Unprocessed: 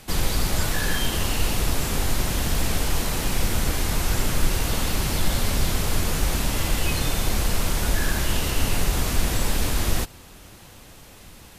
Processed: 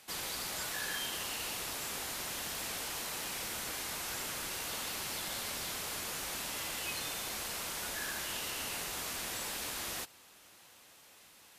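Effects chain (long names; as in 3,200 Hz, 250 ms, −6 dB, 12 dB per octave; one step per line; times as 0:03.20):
high-pass filter 880 Hz 6 dB per octave
level −9 dB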